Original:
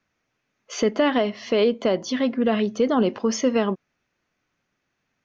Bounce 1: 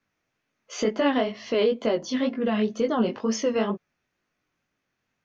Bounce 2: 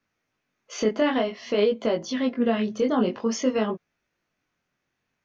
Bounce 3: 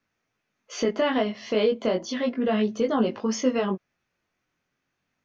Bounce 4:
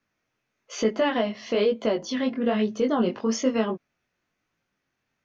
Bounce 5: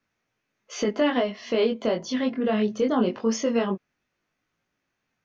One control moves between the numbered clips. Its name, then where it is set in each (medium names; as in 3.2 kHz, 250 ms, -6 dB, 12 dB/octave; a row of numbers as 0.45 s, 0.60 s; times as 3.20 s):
chorus, rate: 2.1 Hz, 0.52 Hz, 0.34 Hz, 1.1 Hz, 0.2 Hz